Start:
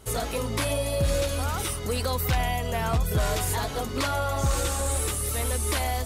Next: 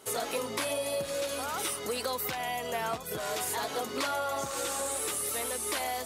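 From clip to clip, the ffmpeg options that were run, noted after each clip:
-af "acompressor=threshold=0.0501:ratio=6,highpass=300"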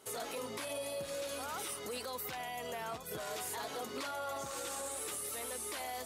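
-af "alimiter=level_in=1.19:limit=0.0631:level=0:latency=1:release=16,volume=0.841,volume=0.501"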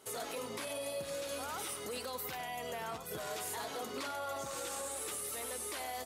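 -af "aecho=1:1:97:0.237"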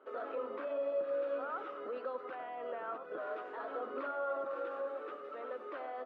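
-af "highpass=f=270:w=0.5412,highpass=f=270:w=1.3066,equalizer=f=290:t=q:w=4:g=4,equalizer=f=550:t=q:w=4:g=8,equalizer=f=870:t=q:w=4:g=-4,equalizer=f=1300:t=q:w=4:g=8,equalizer=f=2100:t=q:w=4:g=-8,lowpass=f=2100:w=0.5412,lowpass=f=2100:w=1.3066,volume=0.841"

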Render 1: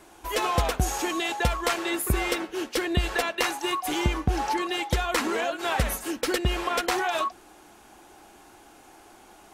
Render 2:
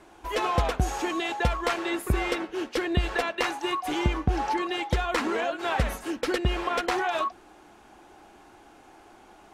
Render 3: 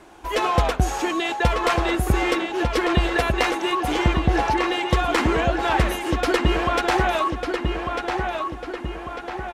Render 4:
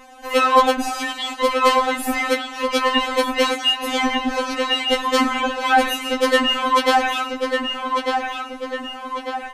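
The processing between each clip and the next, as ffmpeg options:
-af "aemphasis=mode=reproduction:type=50kf"
-filter_complex "[0:a]asplit=2[s0][s1];[s1]adelay=1198,lowpass=f=4100:p=1,volume=0.596,asplit=2[s2][s3];[s3]adelay=1198,lowpass=f=4100:p=1,volume=0.52,asplit=2[s4][s5];[s5]adelay=1198,lowpass=f=4100:p=1,volume=0.52,asplit=2[s6][s7];[s7]adelay=1198,lowpass=f=4100:p=1,volume=0.52,asplit=2[s8][s9];[s9]adelay=1198,lowpass=f=4100:p=1,volume=0.52,asplit=2[s10][s11];[s11]adelay=1198,lowpass=f=4100:p=1,volume=0.52,asplit=2[s12][s13];[s13]adelay=1198,lowpass=f=4100:p=1,volume=0.52[s14];[s0][s2][s4][s6][s8][s10][s12][s14]amix=inputs=8:normalize=0,volume=1.78"
-af "afftfilt=real='re*3.46*eq(mod(b,12),0)':imag='im*3.46*eq(mod(b,12),0)':win_size=2048:overlap=0.75,volume=2.24"

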